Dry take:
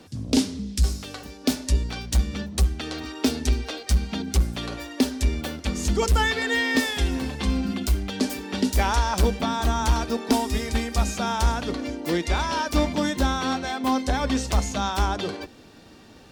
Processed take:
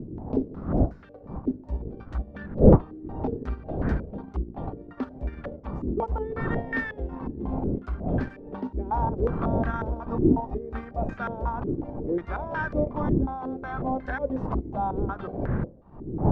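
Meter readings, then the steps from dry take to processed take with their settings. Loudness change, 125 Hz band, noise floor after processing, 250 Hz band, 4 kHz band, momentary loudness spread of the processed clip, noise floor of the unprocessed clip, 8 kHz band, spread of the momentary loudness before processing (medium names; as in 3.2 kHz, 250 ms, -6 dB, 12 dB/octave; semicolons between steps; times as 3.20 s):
-3.5 dB, -1.5 dB, -46 dBFS, -1.5 dB, under -25 dB, 11 LU, -48 dBFS, under -40 dB, 6 LU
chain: wind noise 210 Hz -21 dBFS; transient shaper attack -2 dB, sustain -7 dB; step-sequenced low-pass 5.5 Hz 350–1600 Hz; trim -8.5 dB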